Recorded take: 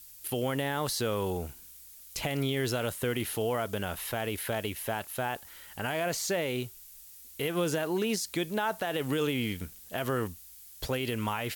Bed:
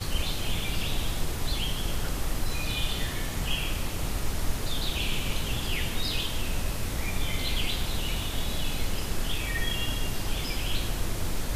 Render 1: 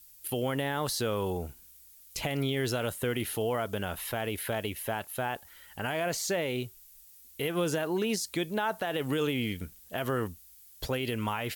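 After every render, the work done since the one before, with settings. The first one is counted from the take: noise reduction 6 dB, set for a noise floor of -51 dBFS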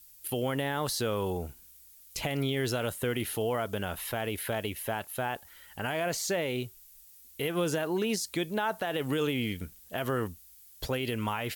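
no audible change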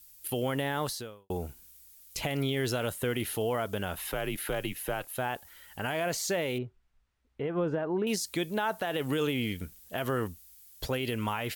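0.83–1.30 s: fade out quadratic; 4.02–5.12 s: frequency shift -82 Hz; 6.58–8.07 s: low-pass 1.3 kHz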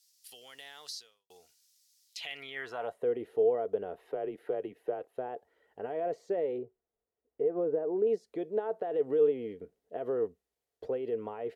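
band-pass sweep 5.1 kHz -> 450 Hz, 2.05–3.11 s; small resonant body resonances 450/700/1900 Hz, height 8 dB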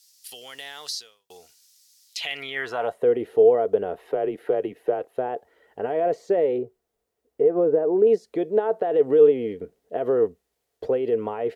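trim +10.5 dB

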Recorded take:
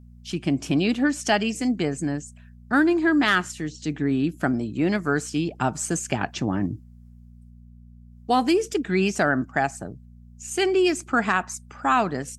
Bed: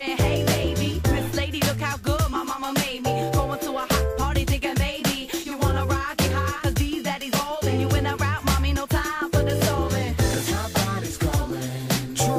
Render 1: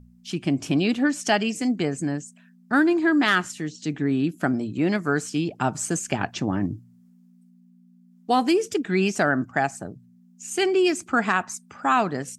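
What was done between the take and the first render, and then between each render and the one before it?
de-hum 60 Hz, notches 2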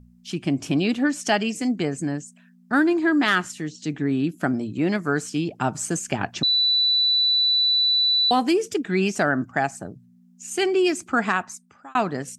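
6.43–8.31 s: bleep 3.97 kHz -16.5 dBFS; 11.30–11.95 s: fade out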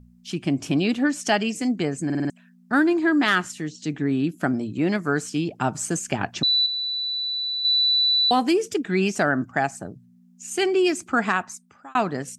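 2.05 s: stutter in place 0.05 s, 5 plays; 6.66–7.65 s: distance through air 260 m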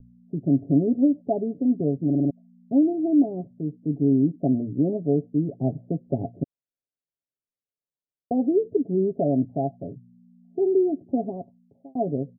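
steep low-pass 680 Hz 72 dB/octave; comb 7.3 ms, depth 54%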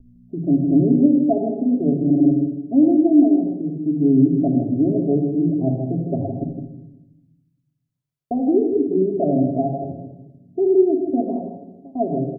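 echo from a far wall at 27 m, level -8 dB; simulated room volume 3300 m³, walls furnished, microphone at 3 m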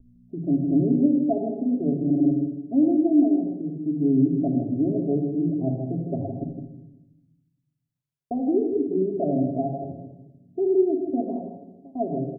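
trim -5 dB

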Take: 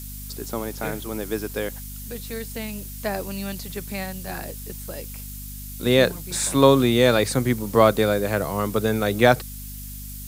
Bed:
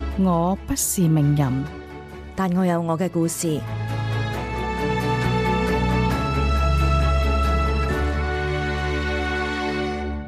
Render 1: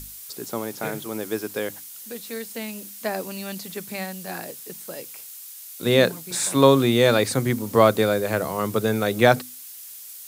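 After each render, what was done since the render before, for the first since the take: hum notches 50/100/150/200/250/300 Hz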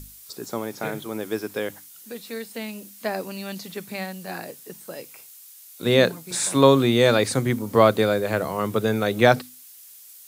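noise print and reduce 6 dB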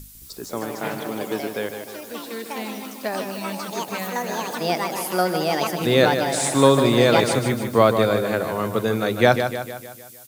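ever faster or slower copies 219 ms, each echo +5 st, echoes 3, each echo -6 dB; feedback delay 152 ms, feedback 52%, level -8 dB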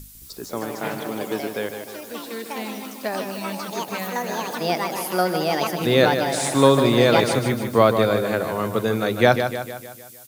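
dynamic bell 7.9 kHz, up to -4 dB, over -45 dBFS, Q 2.7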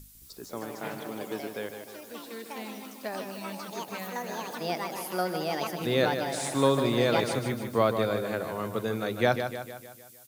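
trim -8.5 dB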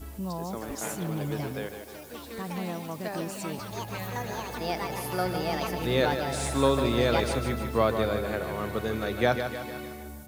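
add bed -15 dB

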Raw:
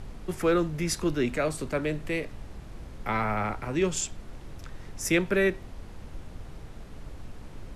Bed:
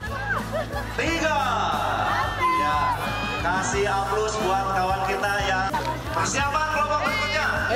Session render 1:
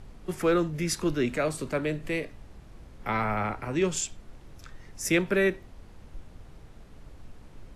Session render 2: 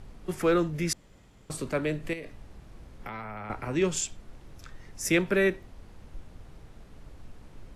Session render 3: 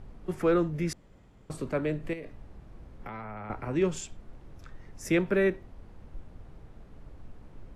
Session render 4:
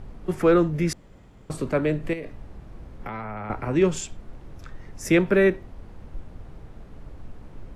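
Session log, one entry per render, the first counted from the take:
noise print and reduce 6 dB
0.93–1.50 s: room tone; 2.13–3.50 s: compression 10:1, threshold -34 dBFS
treble shelf 2.4 kHz -11 dB
trim +6.5 dB

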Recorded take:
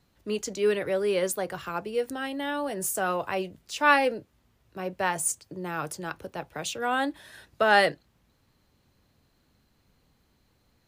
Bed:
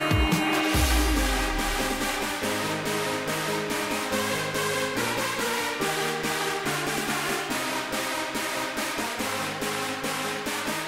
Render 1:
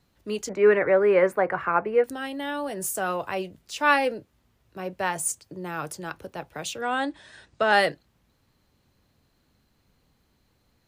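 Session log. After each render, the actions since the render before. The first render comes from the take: 0.49–2.04 s: FFT filter 110 Hz 0 dB, 1.1 kHz +11 dB, 2.2 kHz +9 dB, 3.2 kHz -12 dB, 6 kHz -17 dB; 6.81–7.72 s: steep low-pass 9.2 kHz 96 dB/octave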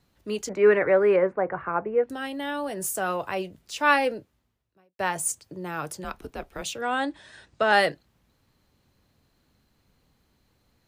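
1.16–2.10 s: tape spacing loss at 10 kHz 40 dB; 4.17–4.99 s: fade out quadratic; 6.04–6.62 s: frequency shift -120 Hz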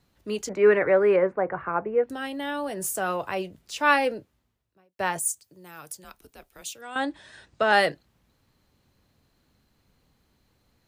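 5.19–6.96 s: pre-emphasis filter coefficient 0.8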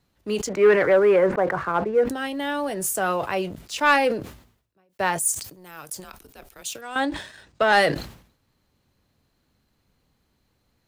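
waveshaping leveller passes 1; decay stretcher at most 100 dB/s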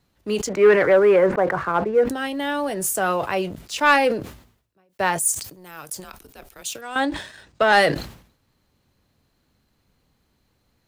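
trim +2 dB

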